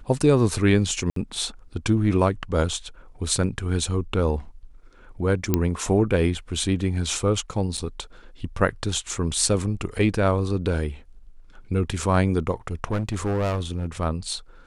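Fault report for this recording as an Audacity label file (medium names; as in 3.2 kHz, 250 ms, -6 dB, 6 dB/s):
1.100000	1.160000	dropout 63 ms
5.540000	5.540000	pop -6 dBFS
7.770000	7.780000	dropout 6.7 ms
12.910000	13.850000	clipped -20.5 dBFS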